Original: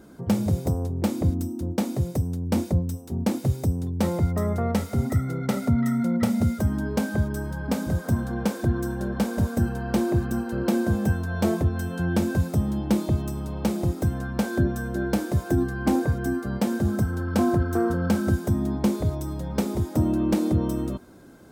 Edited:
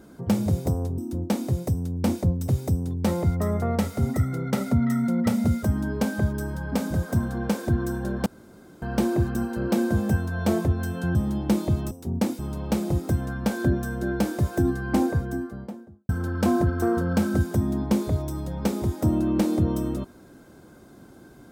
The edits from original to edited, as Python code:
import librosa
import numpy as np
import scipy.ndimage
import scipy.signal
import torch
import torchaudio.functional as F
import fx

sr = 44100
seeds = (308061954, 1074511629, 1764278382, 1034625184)

y = fx.studio_fade_out(x, sr, start_s=15.85, length_s=1.17)
y = fx.edit(y, sr, fx.cut(start_s=0.98, length_s=0.48),
    fx.move(start_s=2.96, length_s=0.48, to_s=13.32),
    fx.room_tone_fill(start_s=9.22, length_s=0.56),
    fx.cut(start_s=12.11, length_s=0.45), tone=tone)